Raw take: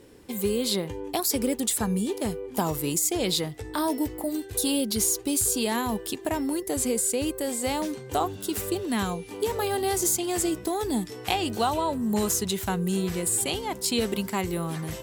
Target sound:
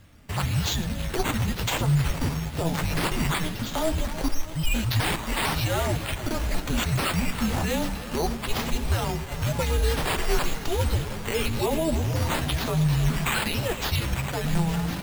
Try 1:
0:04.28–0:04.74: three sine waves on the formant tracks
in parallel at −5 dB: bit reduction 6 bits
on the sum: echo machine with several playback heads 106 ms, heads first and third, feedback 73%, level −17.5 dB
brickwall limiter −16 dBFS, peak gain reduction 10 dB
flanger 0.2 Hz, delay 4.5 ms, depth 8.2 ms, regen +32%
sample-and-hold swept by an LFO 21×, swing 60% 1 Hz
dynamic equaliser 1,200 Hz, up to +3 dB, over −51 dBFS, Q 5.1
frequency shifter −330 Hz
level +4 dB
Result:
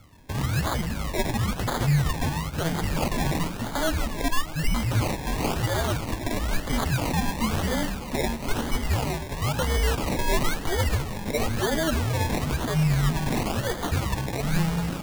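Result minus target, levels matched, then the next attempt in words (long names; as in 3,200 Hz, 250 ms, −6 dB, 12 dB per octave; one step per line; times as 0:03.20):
sample-and-hold swept by an LFO: distortion +5 dB
0:04.28–0:04.74: three sine waves on the formant tracks
in parallel at −5 dB: bit reduction 6 bits
on the sum: echo machine with several playback heads 106 ms, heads first and third, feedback 73%, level −17.5 dB
brickwall limiter −16 dBFS, peak gain reduction 10 dB
flanger 0.2 Hz, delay 4.5 ms, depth 8.2 ms, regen +32%
sample-and-hold swept by an LFO 6×, swing 60% 1 Hz
dynamic equaliser 1,200 Hz, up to +3 dB, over −51 dBFS, Q 5.1
frequency shifter −330 Hz
level +4 dB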